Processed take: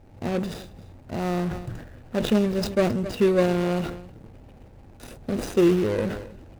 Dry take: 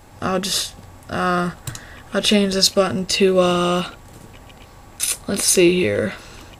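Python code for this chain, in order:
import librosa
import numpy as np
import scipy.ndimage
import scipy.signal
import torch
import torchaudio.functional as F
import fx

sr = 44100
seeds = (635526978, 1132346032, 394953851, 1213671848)

y = scipy.signal.medfilt(x, 41)
y = y + 10.0 ** (-20.0 / 20.0) * np.pad(y, (int(268 * sr / 1000.0), 0))[:len(y)]
y = fx.sustainer(y, sr, db_per_s=71.0)
y = F.gain(torch.from_numpy(y), -3.5).numpy()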